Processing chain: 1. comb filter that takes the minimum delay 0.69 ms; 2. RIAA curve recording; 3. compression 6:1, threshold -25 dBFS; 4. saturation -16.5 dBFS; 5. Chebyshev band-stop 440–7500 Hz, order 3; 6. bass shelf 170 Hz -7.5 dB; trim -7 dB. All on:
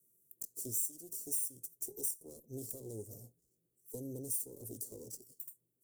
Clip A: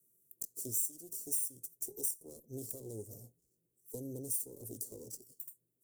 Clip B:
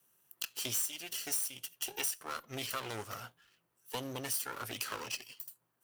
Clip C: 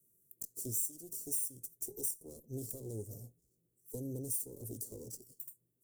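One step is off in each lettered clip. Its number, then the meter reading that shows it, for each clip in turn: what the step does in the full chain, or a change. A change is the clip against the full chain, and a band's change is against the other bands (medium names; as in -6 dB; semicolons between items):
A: 4, distortion -19 dB; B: 5, 4 kHz band +20.0 dB; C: 6, 125 Hz band +4.5 dB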